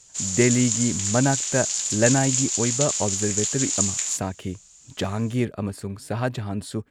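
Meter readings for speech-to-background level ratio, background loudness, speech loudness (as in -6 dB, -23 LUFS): -2.0 dB, -23.5 LUFS, -25.5 LUFS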